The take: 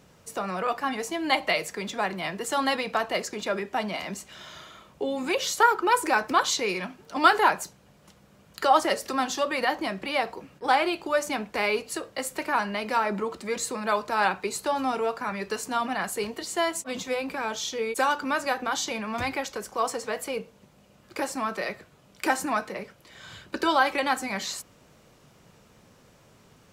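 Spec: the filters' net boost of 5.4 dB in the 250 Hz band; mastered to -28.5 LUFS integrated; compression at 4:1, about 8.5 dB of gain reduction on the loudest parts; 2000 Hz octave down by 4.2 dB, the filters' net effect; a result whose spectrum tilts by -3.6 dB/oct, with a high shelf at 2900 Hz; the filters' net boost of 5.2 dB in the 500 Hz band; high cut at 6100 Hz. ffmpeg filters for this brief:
-af "lowpass=6.1k,equalizer=f=250:t=o:g=5,equalizer=f=500:t=o:g=5.5,equalizer=f=2k:t=o:g=-4.5,highshelf=f=2.9k:g=-4.5,acompressor=threshold=-23dB:ratio=4,volume=0.5dB"

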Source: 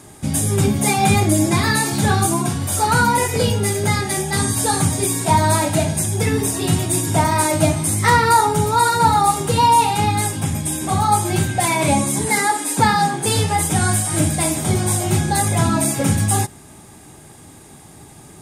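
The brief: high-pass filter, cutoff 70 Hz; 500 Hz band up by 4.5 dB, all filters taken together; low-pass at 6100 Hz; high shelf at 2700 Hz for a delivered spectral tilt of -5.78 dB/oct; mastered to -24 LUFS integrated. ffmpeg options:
-af "highpass=70,lowpass=6.1k,equalizer=f=500:t=o:g=6,highshelf=f=2.7k:g=-4,volume=-6.5dB"

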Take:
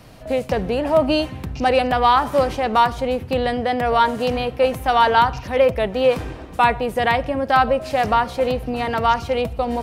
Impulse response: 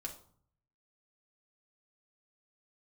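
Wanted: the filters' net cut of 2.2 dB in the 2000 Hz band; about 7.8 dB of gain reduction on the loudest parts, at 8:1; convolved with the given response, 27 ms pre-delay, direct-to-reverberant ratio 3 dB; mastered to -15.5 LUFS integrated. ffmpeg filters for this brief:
-filter_complex "[0:a]equalizer=f=2k:t=o:g=-3,acompressor=threshold=-19dB:ratio=8,asplit=2[a][b];[1:a]atrim=start_sample=2205,adelay=27[c];[b][c]afir=irnorm=-1:irlink=0,volume=-1dB[d];[a][d]amix=inputs=2:normalize=0,volume=7dB"

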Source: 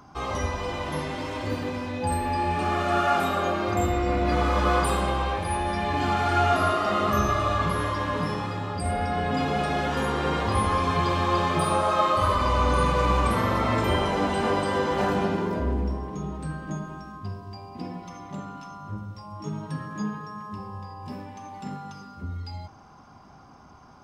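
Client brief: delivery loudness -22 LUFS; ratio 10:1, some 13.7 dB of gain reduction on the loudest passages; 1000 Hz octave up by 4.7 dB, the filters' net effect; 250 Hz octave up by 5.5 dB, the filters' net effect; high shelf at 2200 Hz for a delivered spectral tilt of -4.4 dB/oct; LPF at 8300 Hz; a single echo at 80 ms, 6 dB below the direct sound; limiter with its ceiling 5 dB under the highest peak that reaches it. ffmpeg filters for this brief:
-af "lowpass=8.3k,equalizer=f=250:t=o:g=7,equalizer=f=1k:t=o:g=6.5,highshelf=f=2.2k:g=-5,acompressor=threshold=-29dB:ratio=10,alimiter=level_in=1dB:limit=-24dB:level=0:latency=1,volume=-1dB,aecho=1:1:80:0.501,volume=11.5dB"

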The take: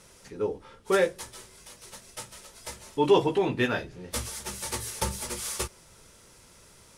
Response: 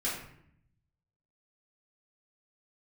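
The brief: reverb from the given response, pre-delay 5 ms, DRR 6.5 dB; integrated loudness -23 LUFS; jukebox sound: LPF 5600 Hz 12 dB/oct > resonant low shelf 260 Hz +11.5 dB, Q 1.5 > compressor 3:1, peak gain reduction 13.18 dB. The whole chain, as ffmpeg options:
-filter_complex "[0:a]asplit=2[a][b];[1:a]atrim=start_sample=2205,adelay=5[c];[b][c]afir=irnorm=-1:irlink=0,volume=-12.5dB[d];[a][d]amix=inputs=2:normalize=0,lowpass=5.6k,lowshelf=f=260:t=q:w=1.5:g=11.5,acompressor=threshold=-30dB:ratio=3,volume=11.5dB"

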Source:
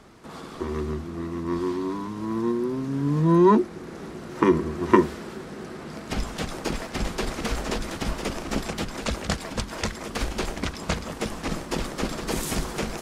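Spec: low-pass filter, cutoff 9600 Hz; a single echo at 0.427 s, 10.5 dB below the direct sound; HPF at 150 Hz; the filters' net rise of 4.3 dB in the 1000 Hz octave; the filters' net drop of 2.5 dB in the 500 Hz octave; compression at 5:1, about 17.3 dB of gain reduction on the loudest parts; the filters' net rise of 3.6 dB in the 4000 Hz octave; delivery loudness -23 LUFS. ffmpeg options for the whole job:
-af "highpass=150,lowpass=9.6k,equalizer=f=500:t=o:g=-5,equalizer=f=1k:t=o:g=5.5,equalizer=f=4k:t=o:g=4.5,acompressor=threshold=-31dB:ratio=5,aecho=1:1:427:0.299,volume=11.5dB"

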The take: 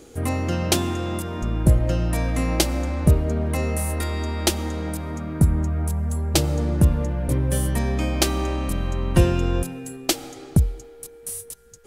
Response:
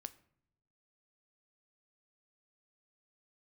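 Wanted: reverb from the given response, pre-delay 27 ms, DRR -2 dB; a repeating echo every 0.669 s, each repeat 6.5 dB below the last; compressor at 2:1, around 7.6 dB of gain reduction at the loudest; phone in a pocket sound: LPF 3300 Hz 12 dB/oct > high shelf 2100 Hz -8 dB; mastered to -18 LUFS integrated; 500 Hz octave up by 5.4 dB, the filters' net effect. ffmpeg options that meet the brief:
-filter_complex "[0:a]equalizer=f=500:t=o:g=7.5,acompressor=threshold=-24dB:ratio=2,aecho=1:1:669|1338|2007|2676|3345|4014:0.473|0.222|0.105|0.0491|0.0231|0.0109,asplit=2[a][b];[1:a]atrim=start_sample=2205,adelay=27[c];[b][c]afir=irnorm=-1:irlink=0,volume=6.5dB[d];[a][d]amix=inputs=2:normalize=0,lowpass=3.3k,highshelf=f=2.1k:g=-8,volume=3.5dB"

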